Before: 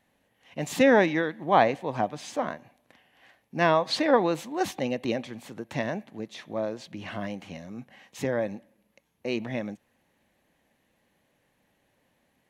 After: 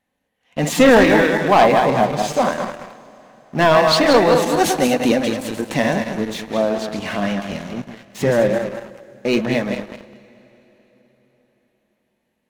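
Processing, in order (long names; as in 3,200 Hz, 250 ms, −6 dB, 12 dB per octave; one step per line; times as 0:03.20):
feedback delay that plays each chunk backwards 106 ms, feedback 60%, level −6 dB
0:04.42–0:06.42: parametric band 9,700 Hz +6 dB 1.4 octaves
leveller curve on the samples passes 3
flanger 0.18 Hz, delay 3.8 ms, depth 1.5 ms, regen −60%
convolution reverb RT60 4.3 s, pre-delay 53 ms, DRR 19.5 dB
level +4.5 dB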